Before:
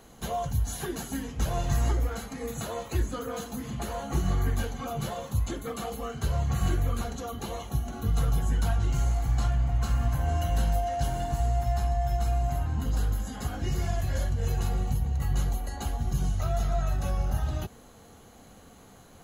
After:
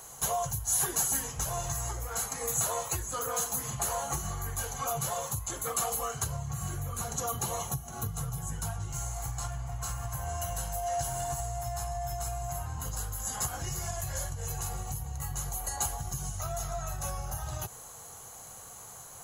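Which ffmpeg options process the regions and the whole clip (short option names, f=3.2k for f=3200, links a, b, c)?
-filter_complex "[0:a]asettb=1/sr,asplit=3[a][b][c];[a]atrim=end=6.264[d];[b]atrim=start=6.26:end=8.93,asetpts=PTS-STARTPTS,afade=t=in:d=0.004:c=qsin,afade=t=out:st=2.666:d=0.004:c=qsin,highpass=43,equalizer=f=160:w=0.75:g=8.5[e];[c]atrim=start=8.926[f];[d][e]acrossfade=d=0.004:c1=hsin:c2=qsin[g];[g][f]acrossfade=d=0.004:c1=qsin:c2=hsin,equalizer=f=125:t=o:w=1:g=10,equalizer=f=250:t=o:w=1:g=-12,equalizer=f=1k:t=o:w=1:g=7,equalizer=f=4k:t=o:w=1:g=-5,equalizer=f=8k:t=o:w=1:g=6,acompressor=threshold=-27dB:ratio=6,bass=f=250:g=-7,treble=f=4k:g=12"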